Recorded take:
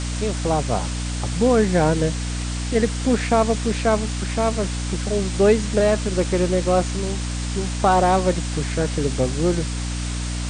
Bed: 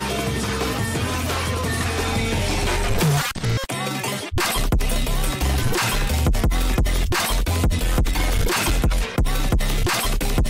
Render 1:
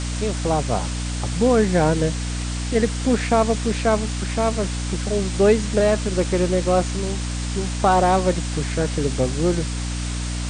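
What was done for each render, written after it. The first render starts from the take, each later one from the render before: nothing audible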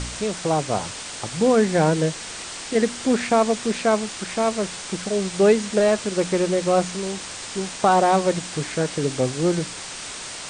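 de-hum 60 Hz, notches 5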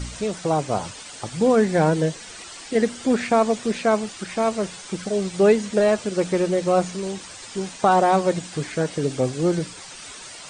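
denoiser 10 dB, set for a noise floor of -35 dBFS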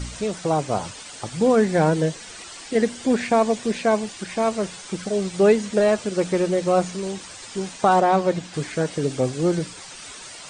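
2.84–4.43 notch 1300 Hz, Q 9.3; 8–8.54 air absorption 67 m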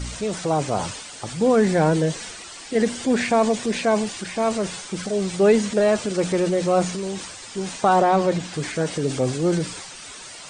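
transient shaper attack -1 dB, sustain +5 dB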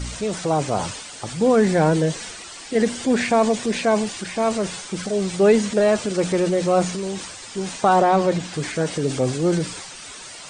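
gain +1 dB

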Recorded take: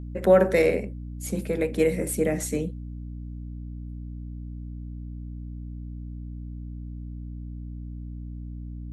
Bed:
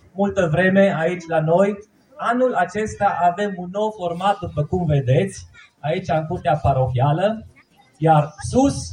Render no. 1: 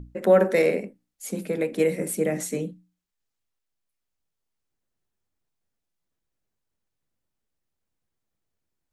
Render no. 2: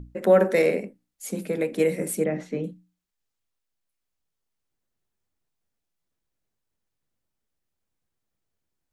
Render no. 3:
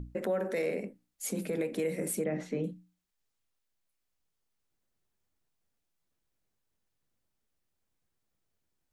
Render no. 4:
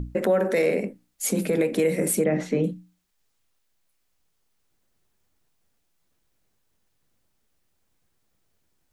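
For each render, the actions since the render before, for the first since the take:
notches 60/120/180/240/300 Hz
2.24–2.64 air absorption 260 m
compressor 2.5:1, threshold -29 dBFS, peak gain reduction 11.5 dB; limiter -23 dBFS, peak gain reduction 6 dB
gain +10 dB

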